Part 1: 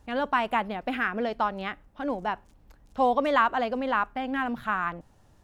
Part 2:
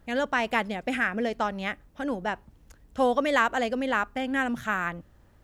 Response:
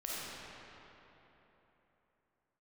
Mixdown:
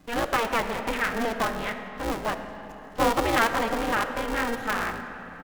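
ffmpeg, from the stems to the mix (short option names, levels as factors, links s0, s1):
-filter_complex "[0:a]bandreject=f=1200:w=12,aeval=exprs='val(0)*sgn(sin(2*PI*230*n/s))':c=same,volume=0.794,asplit=2[s0][s1];[s1]volume=0.266[s2];[1:a]volume=-1,adelay=3.1,volume=0.376,asplit=2[s3][s4];[s4]volume=0.668[s5];[2:a]atrim=start_sample=2205[s6];[s2][s5]amix=inputs=2:normalize=0[s7];[s7][s6]afir=irnorm=-1:irlink=0[s8];[s0][s3][s8]amix=inputs=3:normalize=0"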